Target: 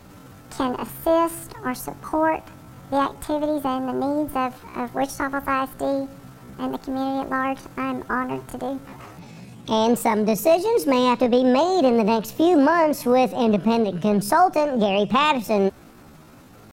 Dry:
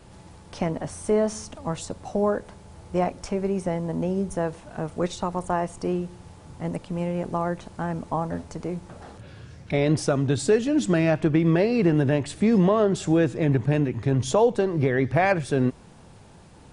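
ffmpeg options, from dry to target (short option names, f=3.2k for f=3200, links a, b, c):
-af "asetrate=68011,aresample=44100,atempo=0.64842,volume=2.5dB"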